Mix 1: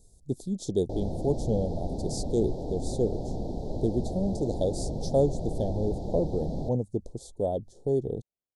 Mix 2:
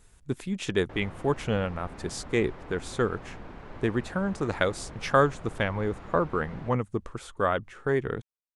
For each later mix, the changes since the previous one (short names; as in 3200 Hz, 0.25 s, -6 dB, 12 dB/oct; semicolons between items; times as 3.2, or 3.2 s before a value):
background -11.5 dB; master: remove inverse Chebyshev band-stop 1100–2800 Hz, stop band 40 dB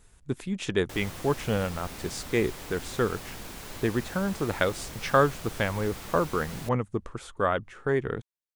background: remove LPF 1500 Hz 12 dB/oct